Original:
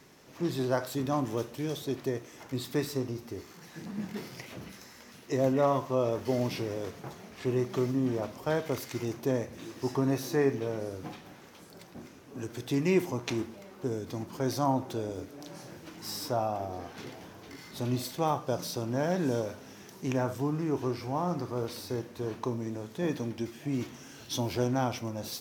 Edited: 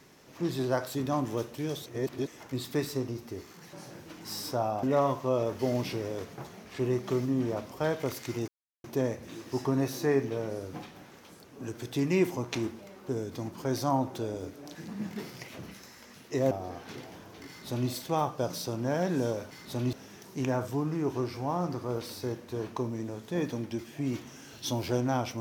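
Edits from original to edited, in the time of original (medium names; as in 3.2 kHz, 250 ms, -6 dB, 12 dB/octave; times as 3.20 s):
1.86–2.27 s: reverse
3.73–5.49 s: swap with 15.50–16.60 s
9.14 s: insert silence 0.36 s
11.74–12.19 s: delete
17.57–17.99 s: copy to 19.60 s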